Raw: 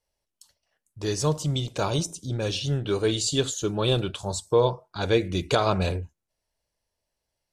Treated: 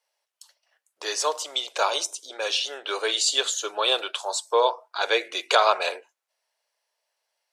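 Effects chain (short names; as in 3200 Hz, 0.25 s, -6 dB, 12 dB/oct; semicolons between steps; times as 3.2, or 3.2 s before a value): Bessel high-pass 840 Hz, order 6; high shelf 4700 Hz -7.5 dB; gain +9 dB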